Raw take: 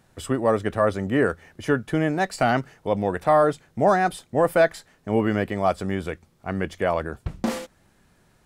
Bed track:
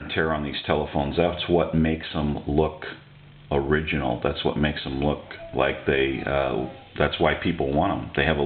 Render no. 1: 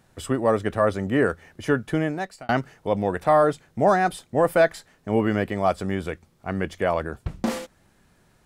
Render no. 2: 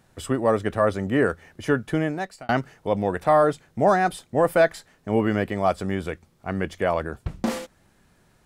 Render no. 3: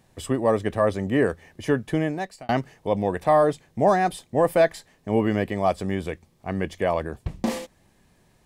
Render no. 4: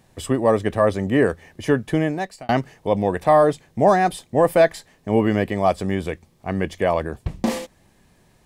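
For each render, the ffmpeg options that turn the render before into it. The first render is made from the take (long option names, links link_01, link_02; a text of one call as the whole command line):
ffmpeg -i in.wav -filter_complex "[0:a]asplit=2[link_01][link_02];[link_01]atrim=end=2.49,asetpts=PTS-STARTPTS,afade=type=out:start_time=1.93:duration=0.56[link_03];[link_02]atrim=start=2.49,asetpts=PTS-STARTPTS,afade=type=in:duration=0.004:curve=hsin[link_04];[link_03][link_04]concat=n=2:v=0:a=1" out.wav
ffmpeg -i in.wav -af anull out.wav
ffmpeg -i in.wav -af "equalizer=frequency=1400:width=7.5:gain=-13.5" out.wav
ffmpeg -i in.wav -af "volume=3.5dB" out.wav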